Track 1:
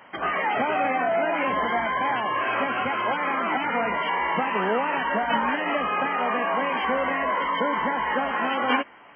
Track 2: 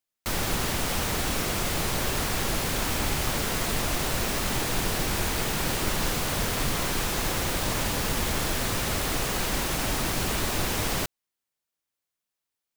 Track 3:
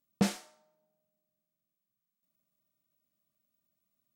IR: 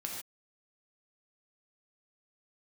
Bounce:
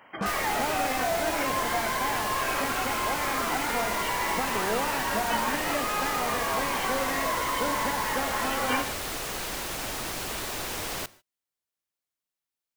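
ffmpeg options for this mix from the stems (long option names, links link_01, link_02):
-filter_complex "[0:a]volume=-8dB,asplit=2[link_01][link_02];[link_02]volume=-4dB[link_03];[1:a]acrossover=split=330|3000[link_04][link_05][link_06];[link_04]acompressor=threshold=-36dB:ratio=6[link_07];[link_07][link_05][link_06]amix=inputs=3:normalize=0,volume=-5dB,asplit=2[link_08][link_09];[link_09]volume=-17.5dB[link_10];[2:a]volume=-7dB[link_11];[3:a]atrim=start_sample=2205[link_12];[link_03][link_10]amix=inputs=2:normalize=0[link_13];[link_13][link_12]afir=irnorm=-1:irlink=0[link_14];[link_01][link_08][link_11][link_14]amix=inputs=4:normalize=0"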